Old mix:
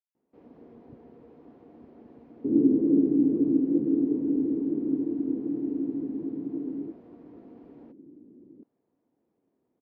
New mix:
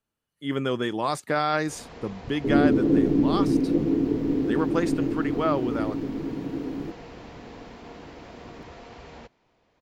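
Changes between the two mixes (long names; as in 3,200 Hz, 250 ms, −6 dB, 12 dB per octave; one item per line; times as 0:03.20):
speech: unmuted
first sound: entry +1.35 s
master: remove resonant band-pass 290 Hz, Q 2.3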